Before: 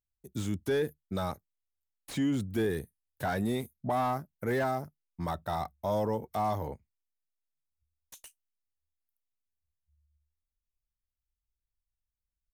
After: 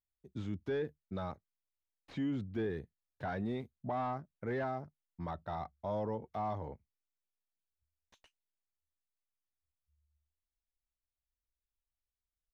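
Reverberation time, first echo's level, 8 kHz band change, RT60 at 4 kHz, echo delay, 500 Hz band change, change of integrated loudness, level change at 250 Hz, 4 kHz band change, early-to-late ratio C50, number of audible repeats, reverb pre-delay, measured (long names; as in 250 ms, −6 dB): no reverb audible, no echo audible, below −20 dB, no reverb audible, no echo audible, −6.5 dB, −6.5 dB, −6.5 dB, −11.5 dB, no reverb audible, no echo audible, no reverb audible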